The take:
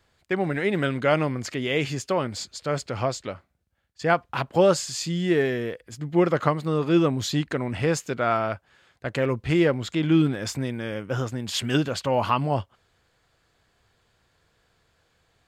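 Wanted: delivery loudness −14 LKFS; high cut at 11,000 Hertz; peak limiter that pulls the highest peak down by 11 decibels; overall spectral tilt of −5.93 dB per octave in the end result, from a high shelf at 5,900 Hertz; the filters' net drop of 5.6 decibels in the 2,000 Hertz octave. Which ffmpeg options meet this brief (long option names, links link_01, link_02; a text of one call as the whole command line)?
ffmpeg -i in.wav -af "lowpass=11000,equalizer=frequency=2000:width_type=o:gain=-7,highshelf=frequency=5900:gain=-4,volume=14.5dB,alimiter=limit=-3dB:level=0:latency=1" out.wav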